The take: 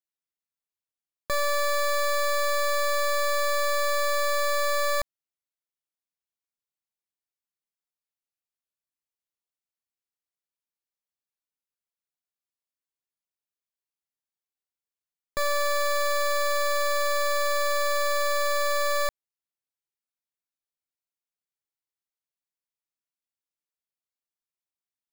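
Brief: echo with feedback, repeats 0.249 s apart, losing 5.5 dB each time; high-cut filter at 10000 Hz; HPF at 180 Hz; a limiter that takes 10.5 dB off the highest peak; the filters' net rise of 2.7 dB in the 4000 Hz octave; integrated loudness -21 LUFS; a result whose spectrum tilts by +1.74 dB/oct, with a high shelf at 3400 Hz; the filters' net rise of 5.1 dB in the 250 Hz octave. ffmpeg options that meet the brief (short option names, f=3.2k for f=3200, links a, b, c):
-af "highpass=180,lowpass=10k,equalizer=f=250:t=o:g=9,highshelf=f=3.4k:g=-3,equalizer=f=4k:t=o:g=5,alimiter=level_in=3dB:limit=-24dB:level=0:latency=1,volume=-3dB,aecho=1:1:249|498|747|996|1245|1494|1743:0.531|0.281|0.149|0.079|0.0419|0.0222|0.0118,volume=14dB"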